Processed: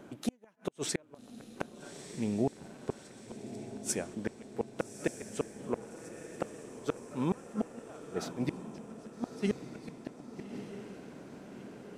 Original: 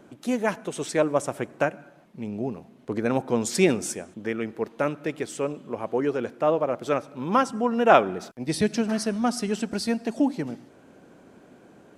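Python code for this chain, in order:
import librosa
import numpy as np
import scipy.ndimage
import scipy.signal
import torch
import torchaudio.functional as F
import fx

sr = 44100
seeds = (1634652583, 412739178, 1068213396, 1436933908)

y = fx.gate_flip(x, sr, shuts_db=-18.0, range_db=-39)
y = fx.echo_diffused(y, sr, ms=1241, feedback_pct=57, wet_db=-10.0)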